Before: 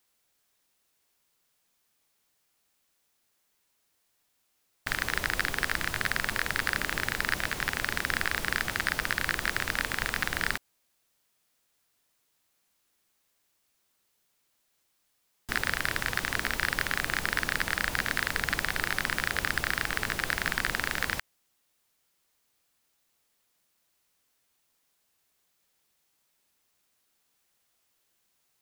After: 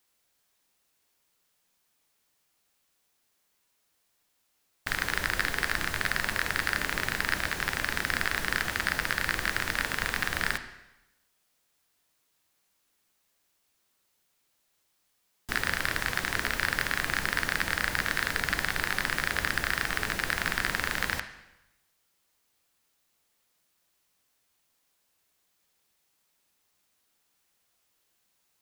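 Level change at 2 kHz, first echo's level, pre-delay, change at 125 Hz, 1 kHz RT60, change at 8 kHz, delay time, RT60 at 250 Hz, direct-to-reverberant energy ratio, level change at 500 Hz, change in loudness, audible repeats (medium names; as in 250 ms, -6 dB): +0.5 dB, no echo, 5 ms, +0.5 dB, 0.95 s, 0.0 dB, no echo, 0.90 s, 8.0 dB, +0.5 dB, +0.5 dB, no echo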